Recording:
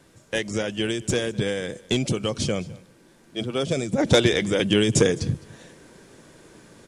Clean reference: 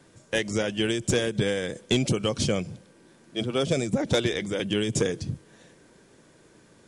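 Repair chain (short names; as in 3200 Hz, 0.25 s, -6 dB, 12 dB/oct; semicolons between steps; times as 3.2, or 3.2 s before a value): expander -45 dBFS, range -21 dB; inverse comb 0.209 s -22.5 dB; gain correction -6.5 dB, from 3.98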